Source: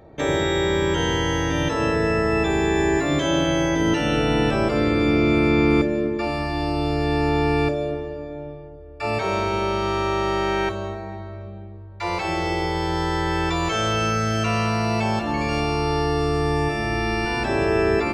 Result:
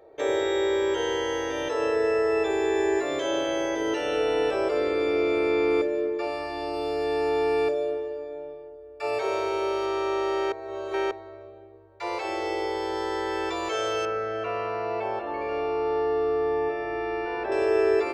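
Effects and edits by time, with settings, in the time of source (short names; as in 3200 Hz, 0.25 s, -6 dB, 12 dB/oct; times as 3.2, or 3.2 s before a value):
6.73–9.86 high shelf 8500 Hz +6 dB
10.52–11.11 reverse
14.05–17.52 LPF 2100 Hz
whole clip: resonant low shelf 290 Hz -13 dB, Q 3; gain -7 dB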